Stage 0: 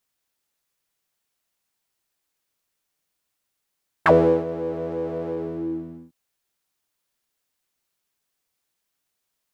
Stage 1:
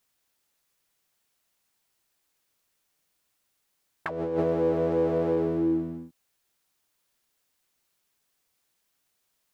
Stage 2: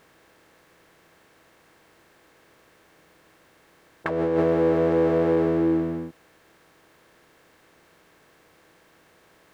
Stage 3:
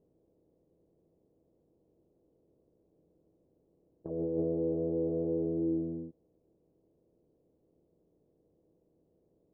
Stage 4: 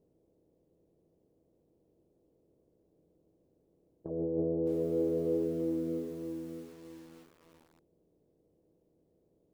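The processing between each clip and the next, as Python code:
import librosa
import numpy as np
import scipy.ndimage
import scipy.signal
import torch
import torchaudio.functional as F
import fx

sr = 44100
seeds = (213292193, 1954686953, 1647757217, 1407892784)

y1 = fx.over_compress(x, sr, threshold_db=-25.0, ratio=-1.0)
y2 = fx.bin_compress(y1, sr, power=0.6)
y2 = y2 * librosa.db_to_amplitude(2.5)
y3 = scipy.signal.sosfilt(scipy.signal.cheby2(4, 80, 3000.0, 'lowpass', fs=sr, output='sos'), y2)
y3 = fx.rider(y3, sr, range_db=10, speed_s=0.5)
y3 = y3 * librosa.db_to_amplitude(-8.5)
y4 = fx.echo_crushed(y3, sr, ms=615, feedback_pct=35, bits=9, wet_db=-6.5)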